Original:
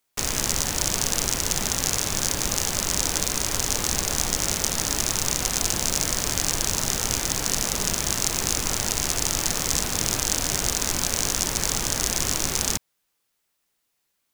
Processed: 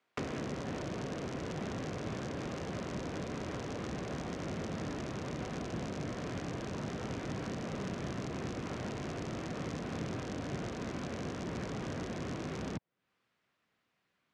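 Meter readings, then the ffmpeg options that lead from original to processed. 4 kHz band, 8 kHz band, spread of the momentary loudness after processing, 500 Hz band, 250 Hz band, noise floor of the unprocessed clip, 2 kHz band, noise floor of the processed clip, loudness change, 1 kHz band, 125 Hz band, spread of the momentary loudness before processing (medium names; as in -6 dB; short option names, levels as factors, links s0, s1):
-23.5 dB, -32.5 dB, 1 LU, -6.0 dB, -4.0 dB, -75 dBFS, -14.0 dB, -81 dBFS, -16.5 dB, -11.5 dB, -7.0 dB, 1 LU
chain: -filter_complex "[0:a]bandreject=f=860:w=12,asubboost=boost=2.5:cutoff=210,acrossover=split=290|600[s0][s1][s2];[s0]acompressor=threshold=0.0178:ratio=4[s3];[s1]acompressor=threshold=0.00447:ratio=4[s4];[s2]acompressor=threshold=0.01:ratio=4[s5];[s3][s4][s5]amix=inputs=3:normalize=0,highpass=160,lowpass=2300,volume=1.68"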